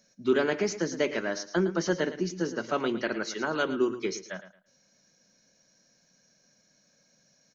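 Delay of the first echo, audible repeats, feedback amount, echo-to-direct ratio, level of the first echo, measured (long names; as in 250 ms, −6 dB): 111 ms, 2, 24%, −12.5 dB, −13.0 dB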